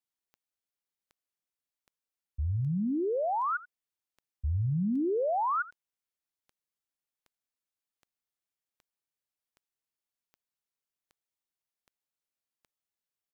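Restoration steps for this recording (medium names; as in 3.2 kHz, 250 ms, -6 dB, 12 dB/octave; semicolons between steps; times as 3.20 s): de-click; inverse comb 84 ms -19 dB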